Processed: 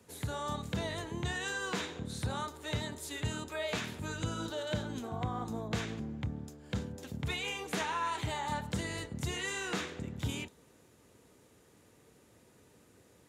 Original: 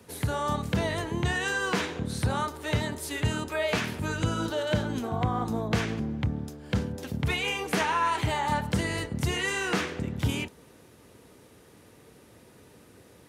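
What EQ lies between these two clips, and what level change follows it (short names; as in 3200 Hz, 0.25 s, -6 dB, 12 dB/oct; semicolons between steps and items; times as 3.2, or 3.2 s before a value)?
dynamic EQ 3700 Hz, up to +7 dB, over -57 dBFS, Q 6.4; bell 7100 Hz +7 dB 0.29 oct; -8.5 dB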